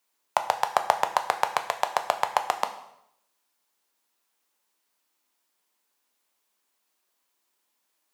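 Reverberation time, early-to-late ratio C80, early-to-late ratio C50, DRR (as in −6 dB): 0.75 s, 13.5 dB, 11.0 dB, 6.5 dB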